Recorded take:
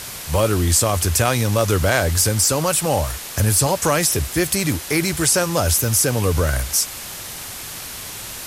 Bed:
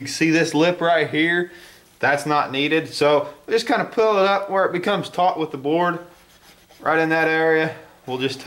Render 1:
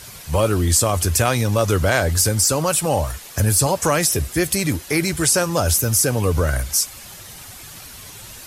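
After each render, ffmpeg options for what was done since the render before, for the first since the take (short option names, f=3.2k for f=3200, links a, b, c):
-af "afftdn=nr=9:nf=-33"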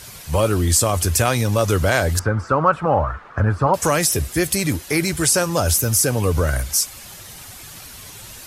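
-filter_complex "[0:a]asettb=1/sr,asplit=3[a][b][c];[a]atrim=end=2.194[d];[b]atrim=start=2.19:end=3.74,asetpts=PTS-STARTPTS,afade=t=in:d=0.004:c=qsin,afade=t=out:st=1.546:d=0.004:c=qsin,lowpass=f=1.3k:t=q:w=3.9[e];[c]atrim=start=3.736[f];[d][e]acrossfade=d=0.004:c1=hsin:c2=qsin[g];[g][f]acrossfade=d=0.004:c1=qsin:c2=hsin"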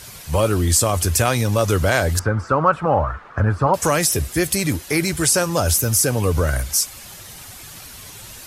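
-af anull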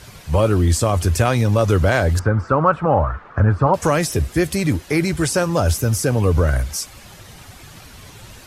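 -af "lowpass=f=3.3k:p=1,lowshelf=f=460:g=3.5"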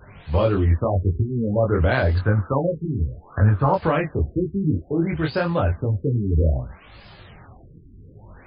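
-af "flanger=delay=19.5:depth=6.1:speed=0.86,afftfilt=real='re*lt(b*sr/1024,410*pow(5200/410,0.5+0.5*sin(2*PI*0.6*pts/sr)))':imag='im*lt(b*sr/1024,410*pow(5200/410,0.5+0.5*sin(2*PI*0.6*pts/sr)))':win_size=1024:overlap=0.75"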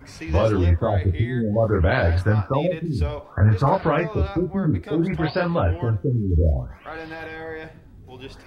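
-filter_complex "[1:a]volume=-16.5dB[a];[0:a][a]amix=inputs=2:normalize=0"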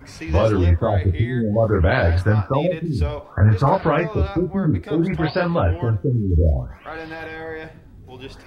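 -af "volume=2dB"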